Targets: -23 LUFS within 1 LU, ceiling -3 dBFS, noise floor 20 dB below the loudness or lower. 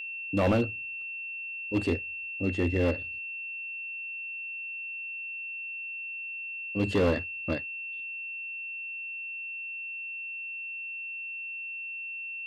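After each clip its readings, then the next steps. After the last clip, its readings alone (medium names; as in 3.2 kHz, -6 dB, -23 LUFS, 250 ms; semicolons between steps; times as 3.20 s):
clipped samples 0.7%; clipping level -19.5 dBFS; steady tone 2.7 kHz; tone level -35 dBFS; loudness -32.5 LUFS; peak level -19.5 dBFS; loudness target -23.0 LUFS
-> clip repair -19.5 dBFS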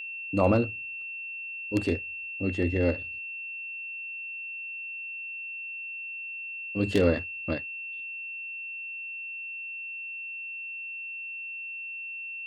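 clipped samples 0.0%; steady tone 2.7 kHz; tone level -35 dBFS
-> band-stop 2.7 kHz, Q 30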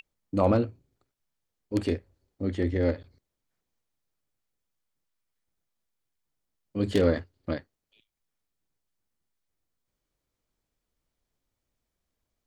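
steady tone not found; loudness -28.5 LUFS; peak level -10.5 dBFS; loudness target -23.0 LUFS
-> trim +5.5 dB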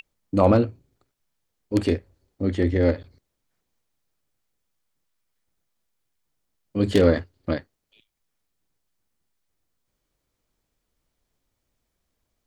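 loudness -23.0 LUFS; peak level -5.0 dBFS; noise floor -79 dBFS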